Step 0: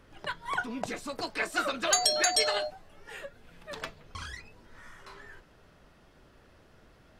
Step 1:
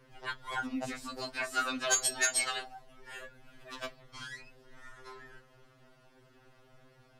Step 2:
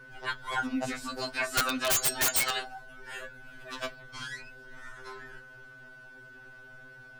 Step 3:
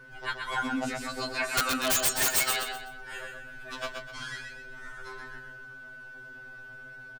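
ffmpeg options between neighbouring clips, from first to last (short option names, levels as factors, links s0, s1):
-af "bandreject=f=1200:w=28,afftfilt=real='re*2.45*eq(mod(b,6),0)':imag='im*2.45*eq(mod(b,6),0)':win_size=2048:overlap=0.75"
-af "aeval=exprs='val(0)+0.00224*sin(2*PI*1500*n/s)':c=same,aeval=exprs='(mod(15*val(0)+1,2)-1)/15':c=same,volume=1.68"
-af "aecho=1:1:126|252|378|504:0.562|0.186|0.0612|0.0202"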